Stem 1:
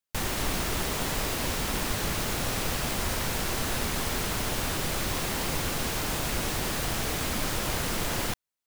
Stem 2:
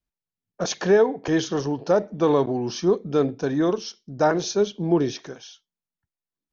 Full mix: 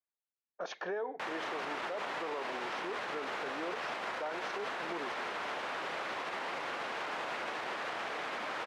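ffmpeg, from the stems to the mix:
-filter_complex "[0:a]adelay=1050,volume=1.33[s0];[1:a]alimiter=limit=0.266:level=0:latency=1:release=396,volume=0.596[s1];[s0][s1]amix=inputs=2:normalize=0,highpass=600,lowpass=2100,alimiter=level_in=1.88:limit=0.0631:level=0:latency=1:release=56,volume=0.531"

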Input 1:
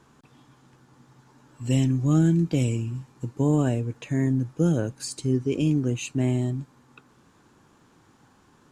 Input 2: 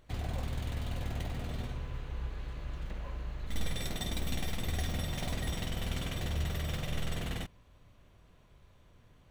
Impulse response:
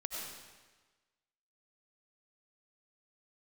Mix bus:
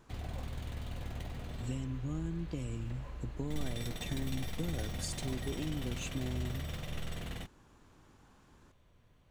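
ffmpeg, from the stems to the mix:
-filter_complex "[0:a]acompressor=threshold=0.0316:ratio=6,volume=0.501[s0];[1:a]volume=0.562[s1];[s0][s1]amix=inputs=2:normalize=0"

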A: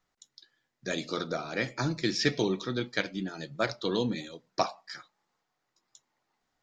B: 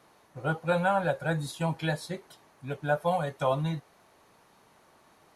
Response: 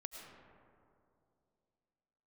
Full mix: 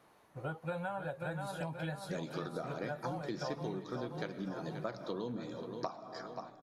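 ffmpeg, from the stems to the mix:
-filter_complex "[0:a]highshelf=f=1500:t=q:w=1.5:g=-7.5,adelay=1250,volume=0.708,asplit=3[s0][s1][s2];[s1]volume=0.531[s3];[s2]volume=0.188[s4];[1:a]equalizer=f=6000:w=0.78:g=-4.5,volume=0.631,asplit=2[s5][s6];[s6]volume=0.422[s7];[2:a]atrim=start_sample=2205[s8];[s3][s8]afir=irnorm=-1:irlink=0[s9];[s4][s7]amix=inputs=2:normalize=0,aecho=0:1:530|1060|1590|2120|2650|3180|3710:1|0.49|0.24|0.118|0.0576|0.0282|0.0138[s10];[s0][s5][s9][s10]amix=inputs=4:normalize=0,acompressor=threshold=0.0158:ratio=6"

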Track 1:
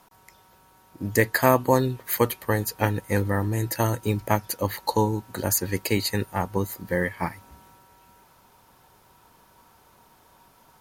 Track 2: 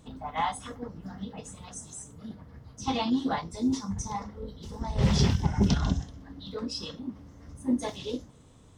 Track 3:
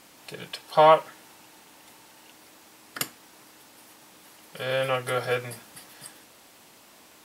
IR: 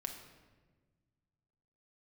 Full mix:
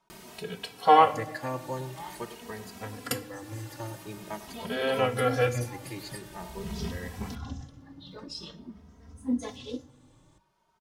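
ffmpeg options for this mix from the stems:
-filter_complex "[0:a]lowpass=7200,volume=0.237,asplit=3[s0][s1][s2];[s1]volume=0.224[s3];[1:a]adelay=1600,volume=0.794,asplit=2[s4][s5];[s5]volume=0.178[s6];[2:a]flanger=delay=7.8:depth=8.6:regen=75:speed=0.35:shape=sinusoidal,acompressor=mode=upward:threshold=0.00631:ratio=2.5,lowshelf=f=440:g=10,adelay=100,volume=1.26,asplit=2[s7][s8];[s8]volume=0.447[s9];[s2]apad=whole_len=457678[s10];[s4][s10]sidechaincompress=threshold=0.00447:ratio=8:attack=16:release=455[s11];[3:a]atrim=start_sample=2205[s12];[s6][s9]amix=inputs=2:normalize=0[s13];[s13][s12]afir=irnorm=-1:irlink=0[s14];[s3]aecho=0:1:101:1[s15];[s0][s11][s7][s14][s15]amix=inputs=5:normalize=0,bandreject=f=50:t=h:w=6,bandreject=f=100:t=h:w=6,bandreject=f=150:t=h:w=6,bandreject=f=200:t=h:w=6,asplit=2[s16][s17];[s17]adelay=2.8,afreqshift=0.47[s18];[s16][s18]amix=inputs=2:normalize=1"

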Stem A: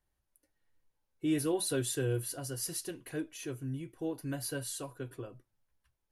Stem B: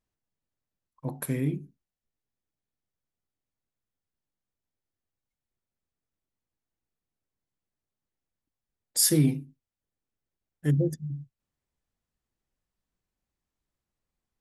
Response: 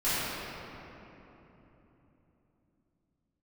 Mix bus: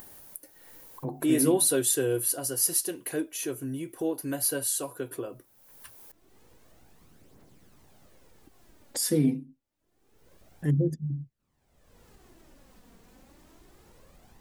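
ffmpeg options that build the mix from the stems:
-filter_complex "[0:a]aemphasis=mode=production:type=bsi,volume=1.12[s0];[1:a]aphaser=in_gain=1:out_gain=1:delay=4.4:decay=0.44:speed=0.27:type=triangular,volume=0.398[s1];[s0][s1]amix=inputs=2:normalize=0,equalizer=f=370:w=0.36:g=8.5,acompressor=mode=upward:threshold=0.0355:ratio=2.5"

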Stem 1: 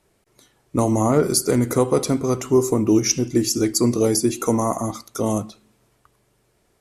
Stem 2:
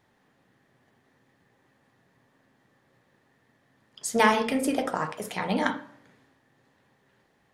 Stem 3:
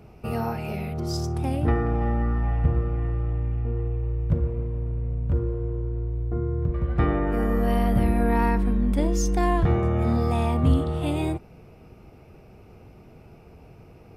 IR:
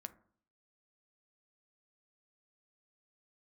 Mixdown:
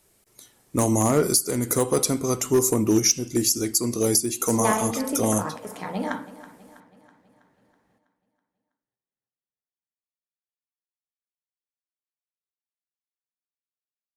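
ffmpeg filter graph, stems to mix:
-filter_complex "[0:a]asoftclip=type=hard:threshold=0.355,crystalizer=i=2.5:c=0,volume=0.531,asplit=2[s0][s1];[s1]volume=0.631[s2];[1:a]equalizer=f=2900:t=o:w=1.5:g=-7,adelay=450,volume=0.841,asplit=2[s3][s4];[s4]volume=0.15[s5];[3:a]atrim=start_sample=2205[s6];[s2][s6]afir=irnorm=-1:irlink=0[s7];[s5]aecho=0:1:325|650|975|1300|1625|1950|2275|2600:1|0.53|0.281|0.149|0.0789|0.0418|0.0222|0.0117[s8];[s0][s3][s7][s8]amix=inputs=4:normalize=0,alimiter=limit=0.398:level=0:latency=1:release=417"

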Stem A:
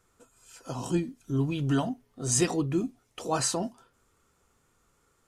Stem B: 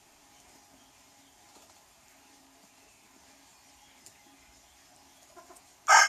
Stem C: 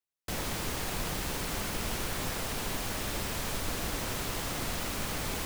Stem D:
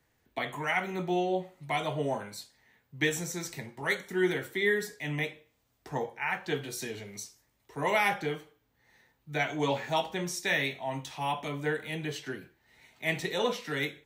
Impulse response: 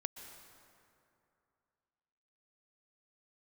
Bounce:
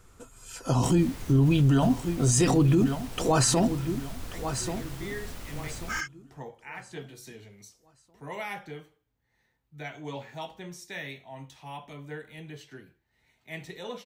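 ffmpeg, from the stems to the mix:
-filter_complex "[0:a]volume=1.41,asplit=3[s0][s1][s2];[s1]volume=0.2[s3];[1:a]highpass=f=1400:w=0.5412,highpass=f=1400:w=1.3066,highshelf=f=6200:g=-11.5,volume=0.178[s4];[2:a]adelay=550,volume=0.158[s5];[3:a]adelay=450,volume=0.168[s6];[s2]apad=whole_len=639479[s7];[s6][s7]sidechaincompress=threshold=0.0112:ratio=8:attack=16:release=1380[s8];[s3]aecho=0:1:1136|2272|3408|4544:1|0.31|0.0961|0.0298[s9];[s0][s4][s5][s8][s9]amix=inputs=5:normalize=0,lowshelf=f=130:g=10.5,acontrast=35,alimiter=limit=0.188:level=0:latency=1:release=26"

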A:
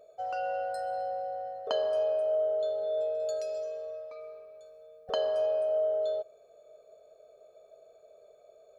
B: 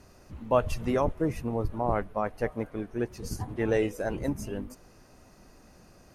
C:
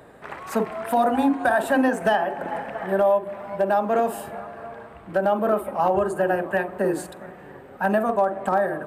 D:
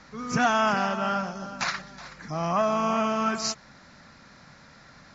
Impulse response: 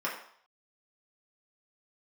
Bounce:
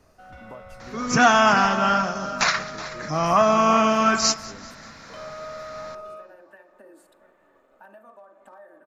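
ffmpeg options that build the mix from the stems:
-filter_complex "[0:a]aeval=exprs='max(val(0),0)':c=same,volume=0.376,asplit=2[s0][s1];[s1]volume=0.531[s2];[1:a]acompressor=threshold=0.0178:ratio=6,volume=0.531,asplit=2[s3][s4];[2:a]lowshelf=f=170:g=-12,aecho=1:1:3.4:0.55,volume=0.112,asplit=2[s5][s6];[s6]volume=0.0794[s7];[3:a]highshelf=f=4600:g=4,acontrast=31,adelay=800,volume=1.06,asplit=3[s8][s9][s10];[s9]volume=0.158[s11];[s10]volume=0.1[s12];[s4]apad=whole_len=391023[s13];[s5][s13]sidechaincompress=threshold=0.00224:ratio=8:attack=16:release=390[s14];[s0][s14]amix=inputs=2:normalize=0,acompressor=threshold=0.00447:ratio=6,volume=1[s15];[4:a]atrim=start_sample=2205[s16];[s2][s7][s11]amix=inputs=3:normalize=0[s17];[s17][s16]afir=irnorm=-1:irlink=0[s18];[s12]aecho=0:1:194|388|582|776|970|1164|1358|1552:1|0.53|0.281|0.149|0.0789|0.0418|0.0222|0.0117[s19];[s3][s8][s15][s18][s19]amix=inputs=5:normalize=0"

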